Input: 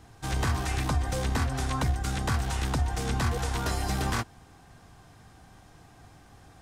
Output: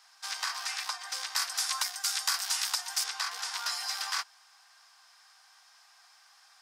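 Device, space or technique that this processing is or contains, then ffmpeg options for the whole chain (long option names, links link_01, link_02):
headphones lying on a table: -filter_complex "[0:a]asettb=1/sr,asplit=3[link_01][link_02][link_03];[link_01]atrim=end=1.364[link_04];[link_02]atrim=start=1.36:end=3.04,asetpts=PTS-STARTPTS,afade=type=in:duration=0.004:curve=qsin,afade=type=out:start_time=1.676:duration=0.004:curve=qsin,aemphasis=mode=production:type=50kf[link_05];[link_03]atrim=start=3.036[link_06];[link_04][link_05]acrossfade=duration=0.004:curve1=hsin:curve2=qsin[link_07];[link_07][link_06]acrossfade=duration=0.004:curve1=qsin:curve2=hsin,highpass=frequency=1000:width=0.5412,highpass=frequency=1000:width=1.3066,equalizer=frequency=5000:width_type=o:width=0.53:gain=11,volume=-1.5dB"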